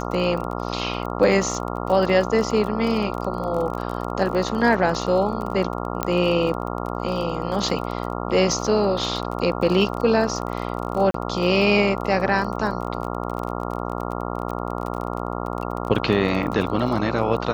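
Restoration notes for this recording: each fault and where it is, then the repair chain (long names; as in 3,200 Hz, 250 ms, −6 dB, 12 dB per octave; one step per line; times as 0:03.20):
mains buzz 60 Hz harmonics 23 −28 dBFS
surface crackle 28 per second −28 dBFS
0:06.03: click −7 dBFS
0:11.11–0:11.14: drop-out 33 ms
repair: click removal
hum removal 60 Hz, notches 23
repair the gap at 0:11.11, 33 ms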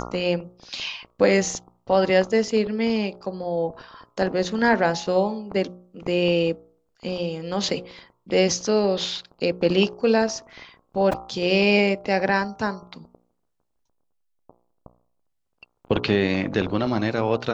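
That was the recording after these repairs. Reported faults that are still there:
0:06.03: click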